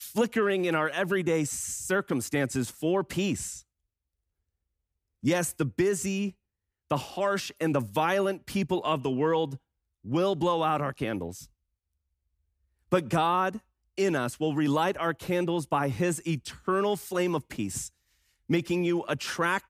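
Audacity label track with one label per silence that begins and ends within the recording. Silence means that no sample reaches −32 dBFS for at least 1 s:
3.550000	5.240000	silence
11.310000	12.920000	silence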